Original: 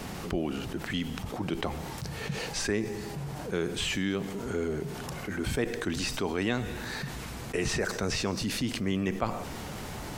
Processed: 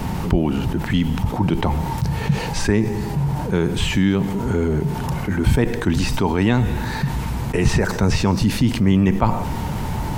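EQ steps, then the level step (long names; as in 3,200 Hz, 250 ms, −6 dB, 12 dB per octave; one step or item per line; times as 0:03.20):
bass and treble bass +11 dB, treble −5 dB
parametric band 910 Hz +12 dB 0.23 octaves
high-shelf EQ 12,000 Hz +10 dB
+7.0 dB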